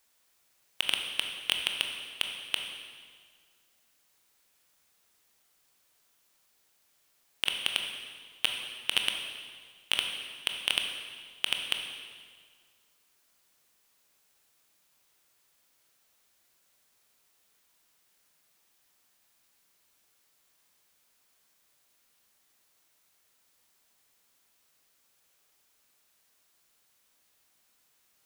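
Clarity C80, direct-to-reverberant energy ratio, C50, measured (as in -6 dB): 6.0 dB, 3.0 dB, 4.5 dB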